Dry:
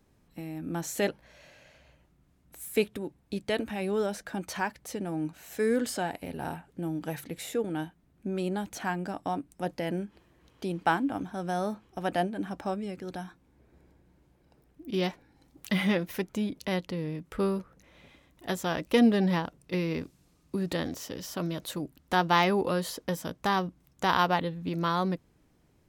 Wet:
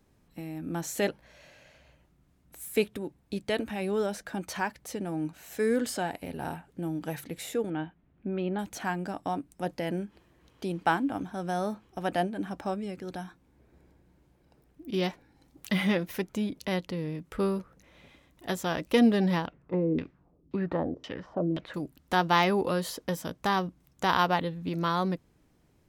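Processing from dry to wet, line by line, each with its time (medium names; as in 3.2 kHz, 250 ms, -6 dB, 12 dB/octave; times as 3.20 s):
7.70–8.59 s: low-pass 3.2 kHz 24 dB/octave
19.46–21.74 s: LFO low-pass saw down 1.9 Hz 280–3300 Hz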